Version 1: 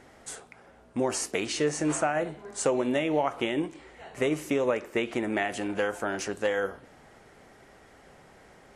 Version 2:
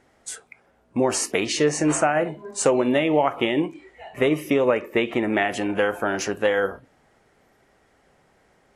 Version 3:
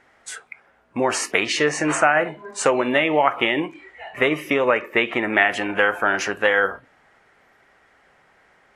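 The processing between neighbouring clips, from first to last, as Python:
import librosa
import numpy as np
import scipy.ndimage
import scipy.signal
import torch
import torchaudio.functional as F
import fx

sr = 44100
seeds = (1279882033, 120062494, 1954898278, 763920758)

y1 = fx.noise_reduce_blind(x, sr, reduce_db=13)
y1 = F.gain(torch.from_numpy(y1), 6.5).numpy()
y2 = fx.peak_eq(y1, sr, hz=1700.0, db=12.5, octaves=2.5)
y2 = F.gain(torch.from_numpy(y2), -4.0).numpy()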